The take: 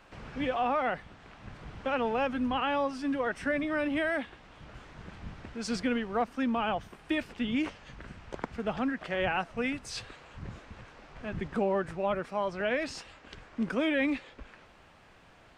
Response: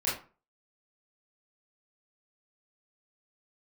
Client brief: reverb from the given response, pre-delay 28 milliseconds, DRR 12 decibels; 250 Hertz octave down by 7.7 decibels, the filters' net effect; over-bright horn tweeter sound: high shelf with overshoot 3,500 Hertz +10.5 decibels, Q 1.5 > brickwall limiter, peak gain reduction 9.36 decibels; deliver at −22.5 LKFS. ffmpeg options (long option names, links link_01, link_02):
-filter_complex "[0:a]equalizer=frequency=250:width_type=o:gain=-9,asplit=2[link_01][link_02];[1:a]atrim=start_sample=2205,adelay=28[link_03];[link_02][link_03]afir=irnorm=-1:irlink=0,volume=-20dB[link_04];[link_01][link_04]amix=inputs=2:normalize=0,highshelf=frequency=3500:width_type=q:width=1.5:gain=10.5,volume=13.5dB,alimiter=limit=-11dB:level=0:latency=1"